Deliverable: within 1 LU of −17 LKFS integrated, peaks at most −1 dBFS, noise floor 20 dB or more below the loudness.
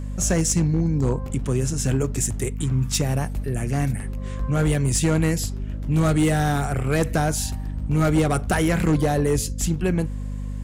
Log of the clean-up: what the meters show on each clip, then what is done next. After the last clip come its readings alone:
share of clipped samples 1.3%; peaks flattened at −13.5 dBFS; mains hum 50 Hz; hum harmonics up to 250 Hz; level of the hum −27 dBFS; integrated loudness −23.0 LKFS; sample peak −13.5 dBFS; target loudness −17.0 LKFS
→ clipped peaks rebuilt −13.5 dBFS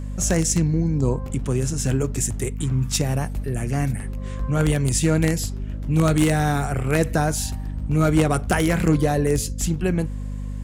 share of clipped samples 0.0%; mains hum 50 Hz; hum harmonics up to 250 Hz; level of the hum −26 dBFS
→ hum removal 50 Hz, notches 5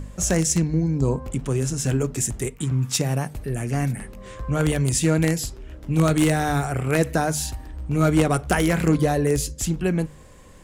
mains hum none found; integrated loudness −22.5 LKFS; sample peak −4.0 dBFS; target loudness −17.0 LKFS
→ level +5.5 dB
brickwall limiter −1 dBFS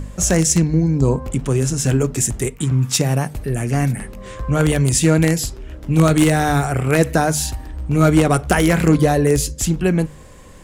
integrated loudness −17.5 LKFS; sample peak −1.0 dBFS; background noise floor −39 dBFS

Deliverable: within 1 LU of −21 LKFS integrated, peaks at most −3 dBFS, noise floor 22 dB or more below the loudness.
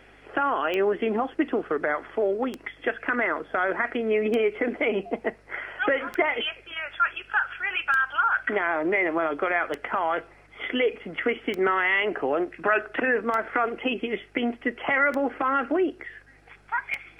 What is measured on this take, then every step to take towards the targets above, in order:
number of clicks 10; mains hum 50 Hz; hum harmonics up to 150 Hz; level of the hum −57 dBFS; integrated loudness −26.0 LKFS; sample peak −8.5 dBFS; target loudness −21.0 LKFS
→ click removal
hum removal 50 Hz, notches 3
level +5 dB

